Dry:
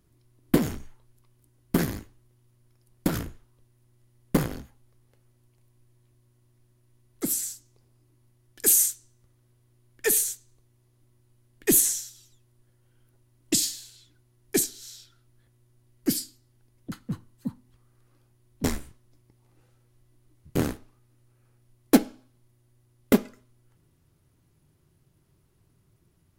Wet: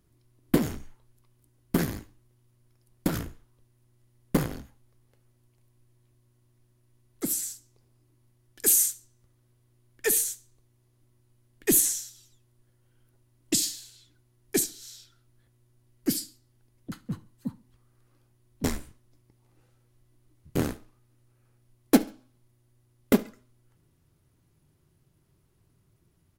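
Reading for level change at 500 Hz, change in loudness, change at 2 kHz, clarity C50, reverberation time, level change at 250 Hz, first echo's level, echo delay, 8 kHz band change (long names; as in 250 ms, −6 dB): −1.5 dB, −1.5 dB, −1.5 dB, no reverb audible, no reverb audible, −1.5 dB, −23.0 dB, 70 ms, −1.5 dB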